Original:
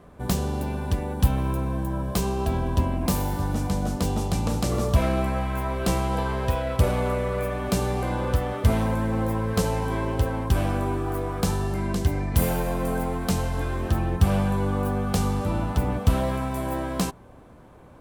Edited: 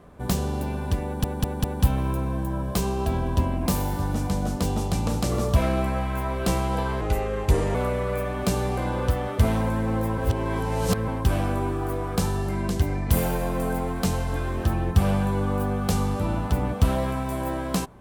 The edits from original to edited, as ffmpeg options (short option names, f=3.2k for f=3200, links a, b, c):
-filter_complex "[0:a]asplit=8[a][b][c][d][e][f][g][h];[a]atrim=end=1.242[i];[b]atrim=start=1.038:end=1.242[j];[c]atrim=start=1.038:end=1.242[k];[d]atrim=start=1.038:end=6.414[l];[e]atrim=start=6.41:end=7,asetpts=PTS-STARTPTS,asetrate=35280,aresample=44100[m];[f]atrim=start=6.996:end=9.432[n];[g]atrim=start=9.428:end=10.332,asetpts=PTS-STARTPTS,areverse[o];[h]atrim=start=10.328[p];[i][j]acrossfade=d=0.004:c1=hsin:c2=hsin[q];[q][k]acrossfade=d=0.004:c1=hsin:c2=hsin[r];[r][l]acrossfade=d=0.004:c1=hsin:c2=hsin[s];[s][m]acrossfade=d=0.004:c1=hsin:c2=hsin[t];[t][n]acrossfade=d=0.004:c1=hsin:c2=hsin[u];[u][o]acrossfade=d=0.004:c1=hsin:c2=hsin[v];[v][p]acrossfade=d=0.004:c1=hsin:c2=hsin"